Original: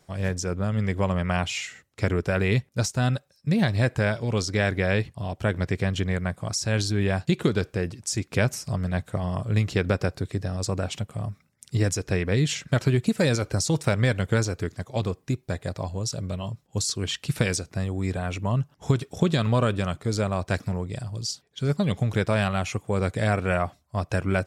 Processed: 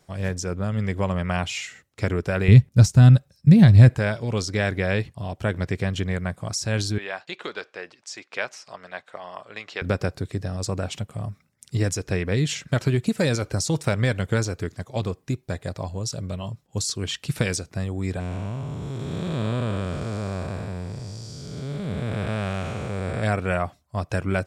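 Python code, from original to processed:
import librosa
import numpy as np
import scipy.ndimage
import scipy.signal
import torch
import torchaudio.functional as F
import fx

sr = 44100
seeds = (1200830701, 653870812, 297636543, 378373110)

y = fx.bass_treble(x, sr, bass_db=14, treble_db=1, at=(2.48, 3.95))
y = fx.bandpass_edges(y, sr, low_hz=710.0, high_hz=4200.0, at=(6.98, 9.82))
y = fx.spec_blur(y, sr, span_ms=480.0, at=(18.19, 23.22), fade=0.02)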